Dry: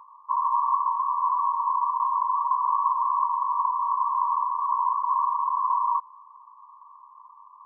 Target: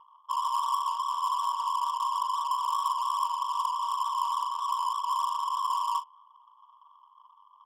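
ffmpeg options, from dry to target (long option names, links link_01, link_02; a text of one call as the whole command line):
ffmpeg -i in.wav -filter_complex "[0:a]adynamicsmooth=sensitivity=5:basefreq=1000,aemphasis=mode=production:type=75kf,asplit=2[link_01][link_02];[link_02]adelay=41,volume=-11.5dB[link_03];[link_01][link_03]amix=inputs=2:normalize=0,volume=-6dB" out.wav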